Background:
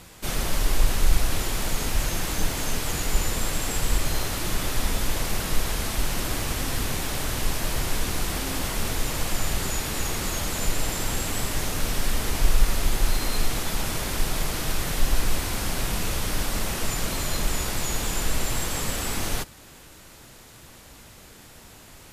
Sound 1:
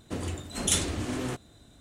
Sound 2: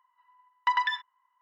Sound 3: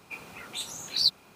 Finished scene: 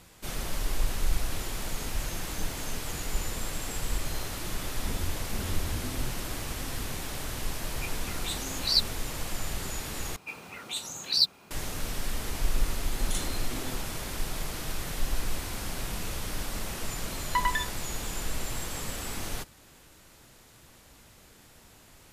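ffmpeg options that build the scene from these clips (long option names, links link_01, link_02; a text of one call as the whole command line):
ffmpeg -i bed.wav -i cue0.wav -i cue1.wav -i cue2.wav -filter_complex "[1:a]asplit=2[link_01][link_02];[3:a]asplit=2[link_03][link_04];[0:a]volume=-7.5dB[link_05];[link_01]aemphasis=mode=reproduction:type=riaa[link_06];[link_04]acontrast=58[link_07];[link_02]alimiter=limit=-13.5dB:level=0:latency=1:release=71[link_08];[link_05]asplit=2[link_09][link_10];[link_09]atrim=end=10.164[link_11];[link_07]atrim=end=1.35,asetpts=PTS-STARTPTS,volume=-5.5dB[link_12];[link_10]atrim=start=11.506[link_13];[link_06]atrim=end=1.8,asetpts=PTS-STARTPTS,volume=-14dB,afade=type=in:duration=0.004:curve=hsin,afade=type=out:start_time=1.796:duration=0.004:curve=hsin,adelay=4750[link_14];[link_03]atrim=end=1.35,asetpts=PTS-STARTPTS,volume=-0.5dB,afade=type=in:duration=0.004:curve=hsin,afade=type=out:start_time=1.346:duration=0.004:curve=hsin,adelay=7710[link_15];[link_08]atrim=end=1.8,asetpts=PTS-STARTPTS,volume=-8.5dB,afade=type=in:duration=0.004:curve=hsin,afade=type=out:start_time=1.796:duration=0.004:curve=hsin,adelay=12430[link_16];[2:a]atrim=end=1.41,asetpts=PTS-STARTPTS,volume=-2dB,afade=type=in:duration=0.004:curve=hsin,afade=type=out:start_time=1.406:duration=0.004:curve=hsin,adelay=735588S[link_17];[link_11][link_12]acrossfade=duration=0.004:curve1=hsin:curve2=hsin[link_18];[link_18][link_13]acrossfade=duration=0.004:curve1=hsin:curve2=hsin[link_19];[link_19][link_14][link_15][link_16][link_17]amix=inputs=5:normalize=0" out.wav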